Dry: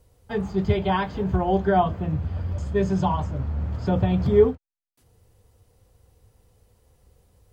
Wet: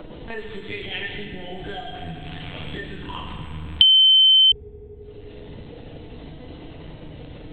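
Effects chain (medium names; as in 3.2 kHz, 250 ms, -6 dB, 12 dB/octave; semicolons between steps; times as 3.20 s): harmonic-percussive separation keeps harmonic; 2.11–2.65 s: bass shelf 320 Hz -9.5 dB; compression 6:1, threshold -33 dBFS, peak gain reduction 20 dB; chorus voices 6, 0.42 Hz, delay 27 ms, depth 3.2 ms; LPC vocoder at 8 kHz pitch kept; 0.85–1.56 s: static phaser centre 2.6 kHz, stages 4; FDN reverb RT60 2 s, low-frequency decay 1×, high-frequency decay 0.8×, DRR 1 dB; 3.81–4.52 s: bleep 3.08 kHz -10.5 dBFS; three bands compressed up and down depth 100%; trim +2 dB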